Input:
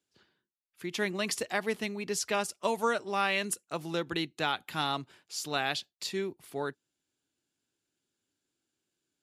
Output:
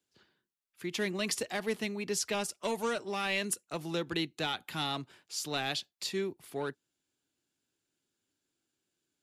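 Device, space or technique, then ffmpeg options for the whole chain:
one-band saturation: -filter_complex "[0:a]acrossover=split=480|2300[link_01][link_02][link_03];[link_02]asoftclip=type=tanh:threshold=-35dB[link_04];[link_01][link_04][link_03]amix=inputs=3:normalize=0"

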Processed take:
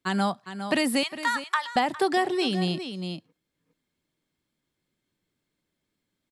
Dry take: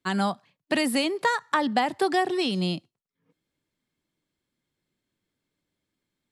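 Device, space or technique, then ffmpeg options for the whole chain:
ducked delay: -filter_complex "[0:a]asettb=1/sr,asplit=3[link_01][link_02][link_03];[link_01]atrim=end=1.034[link_04];[link_02]atrim=start=1.03:end=1.76,asetpts=PTS-STARTPTS,afade=type=in:duration=0.004:curve=qsin,afade=type=out:start_time=0.726:duration=0.004:curve=qsin,highpass=frequency=980:width=0.5412,highpass=frequency=980:width=1.3066[link_05];[link_03]atrim=start=1.756[link_06];[link_04][link_05]acrossfade=duration=0.004:curve1=hsin:curve2=qsin[link_07];[link_07][link_06]acrossfade=duration=0.004:curve1=qsin:curve2=hsin,asplit=3[link_08][link_09][link_10];[link_09]adelay=407,volume=-4.5dB[link_11];[link_10]apad=whole_len=296271[link_12];[link_11][link_12]sidechaincompress=threshold=-29dB:ratio=6:attack=7.6:release=960[link_13];[link_08][link_13]amix=inputs=2:normalize=0"

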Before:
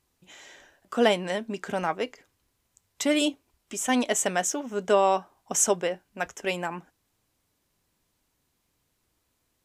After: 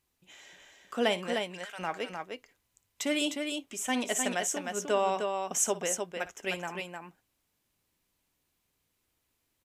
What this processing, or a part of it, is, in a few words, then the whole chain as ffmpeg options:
presence and air boost: -filter_complex "[0:a]asplit=3[link_01][link_02][link_03];[link_01]afade=type=out:start_time=1.33:duration=0.02[link_04];[link_02]highpass=1300,afade=type=in:start_time=1.33:duration=0.02,afade=type=out:start_time=1.78:duration=0.02[link_05];[link_03]afade=type=in:start_time=1.78:duration=0.02[link_06];[link_04][link_05][link_06]amix=inputs=3:normalize=0,equalizer=frequency=2600:width_type=o:width=1.1:gain=4,highshelf=frequency=11000:gain=6.5,aecho=1:1:58|306:0.158|0.562,volume=-7dB"

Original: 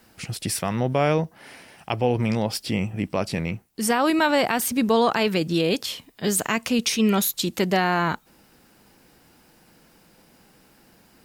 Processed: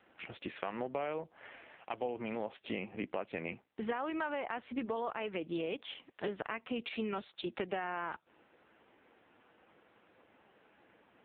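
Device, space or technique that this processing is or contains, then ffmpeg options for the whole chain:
voicemail: -af "highpass=340,lowpass=3000,acompressor=threshold=-31dB:ratio=6,volume=-2dB" -ar 8000 -c:a libopencore_amrnb -b:a 5900

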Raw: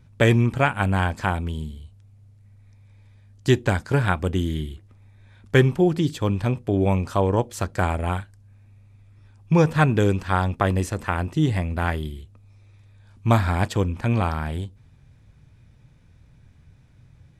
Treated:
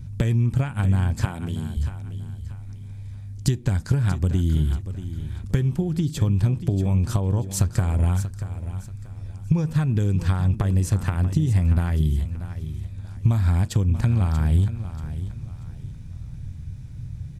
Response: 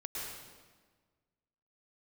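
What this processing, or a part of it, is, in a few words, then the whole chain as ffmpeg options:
serial compression, leveller first: -filter_complex "[0:a]acompressor=threshold=-24dB:ratio=2.5,acompressor=threshold=-32dB:ratio=6,asettb=1/sr,asplit=3[link_01][link_02][link_03];[link_01]atrim=end=1.254[link_04];[link_02]atrim=start=1.25:end=1.77,asetpts=PTS-STARTPTS,afade=type=in:duration=0.004:curve=qsin,afade=type=out:start_time=0.516:duration=0.004:curve=qsin,highpass=220[link_05];[link_03]atrim=start=1.766[link_06];[link_04][link_05]acrossfade=duration=0.004:curve1=hsin:curve2=qsin[link_07];[link_07][link_06]acrossfade=duration=0.004:curve1=qsin:curve2=hsin,bass=frequency=250:gain=15,treble=frequency=4000:gain=9,aecho=1:1:635|1270|1905:0.251|0.0804|0.0257,volume=2.5dB"

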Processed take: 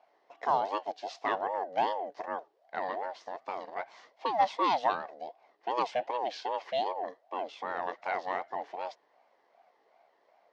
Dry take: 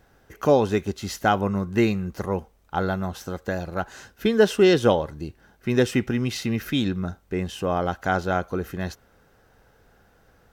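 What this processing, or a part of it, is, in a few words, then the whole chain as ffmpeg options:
voice changer toy: -af "aeval=exprs='val(0)*sin(2*PI*550*n/s+550*0.35/2.6*sin(2*PI*2.6*n/s))':channel_layout=same,highpass=560,equalizer=frequency=700:width_type=q:width=4:gain=7,equalizer=frequency=1300:width_type=q:width=4:gain=-8,equalizer=frequency=2400:width_type=q:width=4:gain=-6,equalizer=frequency=3600:width_type=q:width=4:gain=-3,lowpass=frequency=4700:width=0.5412,lowpass=frequency=4700:width=1.3066,volume=-4.5dB"

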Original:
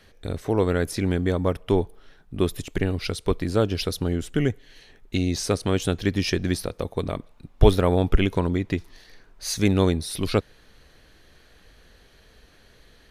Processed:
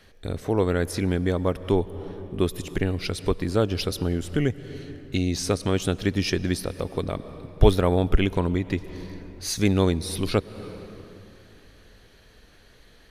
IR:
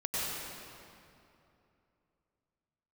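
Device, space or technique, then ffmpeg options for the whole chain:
ducked reverb: -filter_complex "[0:a]asplit=3[link_01][link_02][link_03];[1:a]atrim=start_sample=2205[link_04];[link_02][link_04]afir=irnorm=-1:irlink=0[link_05];[link_03]apad=whole_len=577852[link_06];[link_05][link_06]sidechaincompress=threshold=-30dB:ratio=6:attack=20:release=235,volume=-16.5dB[link_07];[link_01][link_07]amix=inputs=2:normalize=0,volume=-1dB"

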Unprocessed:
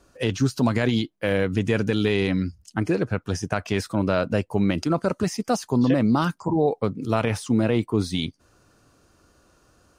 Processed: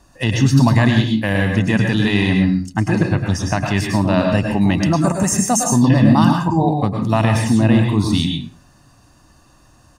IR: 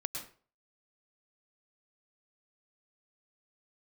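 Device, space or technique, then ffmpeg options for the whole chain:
microphone above a desk: -filter_complex "[0:a]asettb=1/sr,asplit=3[link_01][link_02][link_03];[link_01]atrim=end=4.984[link_04];[link_02]atrim=start=4.98:end=5.69,asetpts=PTS-STARTPTS,afade=type=in:duration=0.004:curve=qsin,afade=type=out:start_time=0.706:duration=0.004:curve=qsin,highshelf=frequency=5800:width_type=q:width=3:gain=8[link_05];[link_03]atrim=start=5.686[link_06];[link_04][link_05]acrossfade=duration=0.004:curve1=hsin:curve2=qsin[link_07];[link_07][link_06]acrossfade=duration=0.004:curve1=qsin:curve2=hsin,aecho=1:1:1.1:0.66[link_08];[1:a]atrim=start_sample=2205[link_09];[link_08][link_09]afir=irnorm=-1:irlink=0,volume=5.5dB"

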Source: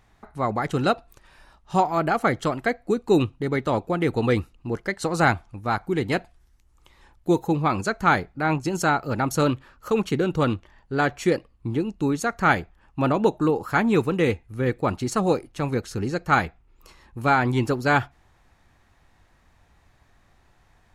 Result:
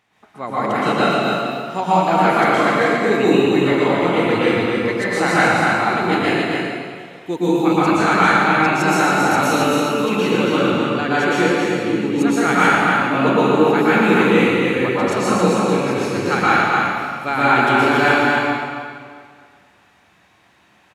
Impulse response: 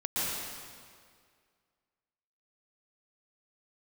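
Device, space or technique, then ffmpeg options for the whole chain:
stadium PA: -filter_complex "[0:a]highpass=190,equalizer=frequency=2700:width_type=o:width=0.96:gain=7,aecho=1:1:236.2|274.1:0.282|0.562[link_01];[1:a]atrim=start_sample=2205[link_02];[link_01][link_02]afir=irnorm=-1:irlink=0,volume=-2.5dB"

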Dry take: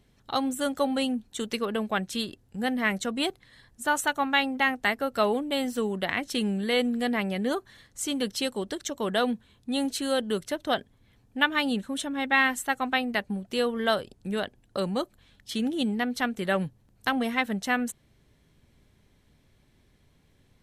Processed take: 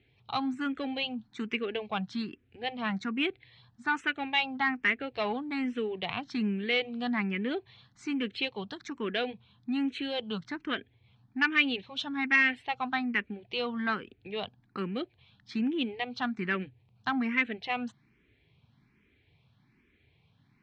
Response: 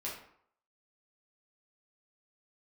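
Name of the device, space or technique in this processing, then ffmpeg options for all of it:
barber-pole phaser into a guitar amplifier: -filter_complex "[0:a]asplit=2[link_01][link_02];[link_02]afreqshift=1.2[link_03];[link_01][link_03]amix=inputs=2:normalize=1,asoftclip=type=tanh:threshold=-19.5dB,highpass=82,equalizer=frequency=120:width_type=q:width=4:gain=5,equalizer=frequency=570:width_type=q:width=4:gain=-10,equalizer=frequency=2400:width_type=q:width=4:gain=9,lowpass=frequency=4100:width=0.5412,lowpass=frequency=4100:width=1.3066,asettb=1/sr,asplit=3[link_04][link_05][link_06];[link_04]atrim=end=11.414[link_07];[link_05]atrim=start=11.41:end=12.36,asetpts=PTS-STARTPTS,afade=type=in:duration=0.004:curve=qsin,afade=type=out:start_time=0.946:duration=0.004:curve=qsin,equalizer=frequency=6100:width=0.63:gain=6[link_08];[link_06]atrim=start=12.356[link_09];[link_07][link_08]acrossfade=duration=0.004:curve1=hsin:curve2=qsin[link_10];[link_10][link_09]acrossfade=duration=0.004:curve1=qsin:curve2=hsin"

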